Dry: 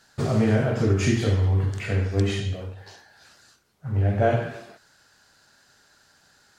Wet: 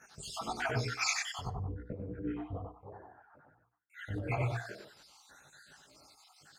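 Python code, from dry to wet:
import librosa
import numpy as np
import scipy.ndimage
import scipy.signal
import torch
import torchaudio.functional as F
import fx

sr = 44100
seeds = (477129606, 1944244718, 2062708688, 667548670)

y = fx.spec_dropout(x, sr, seeds[0], share_pct=71)
y = scipy.signal.sosfilt(scipy.signal.butter(2, 51.0, 'highpass', fs=sr, output='sos'), y)
y = fx.hum_notches(y, sr, base_hz=60, count=8)
y = fx.lowpass(y, sr, hz=1100.0, slope=24, at=(1.43, 3.9))
y = fx.over_compress(y, sr, threshold_db=-34.0, ratio=-1.0)
y = fx.chorus_voices(y, sr, voices=4, hz=0.94, base_ms=18, depth_ms=4.1, mix_pct=60)
y = y + 10.0 ** (-5.0 / 20.0) * np.pad(y, (int(95 * sr / 1000.0), 0))[:len(y)]
y = fx.rev_fdn(y, sr, rt60_s=0.43, lf_ratio=0.95, hf_ratio=0.9, size_ms=20.0, drr_db=14.0)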